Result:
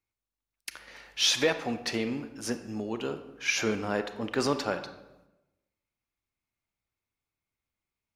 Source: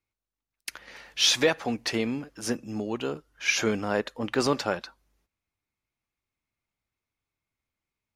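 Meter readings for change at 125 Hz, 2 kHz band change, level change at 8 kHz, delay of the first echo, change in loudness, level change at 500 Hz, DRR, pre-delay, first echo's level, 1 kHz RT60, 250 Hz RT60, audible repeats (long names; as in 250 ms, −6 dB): −2.5 dB, −2.5 dB, −2.5 dB, no echo audible, −2.5 dB, −2.5 dB, 9.0 dB, 28 ms, no echo audible, 0.95 s, 1.1 s, no echo audible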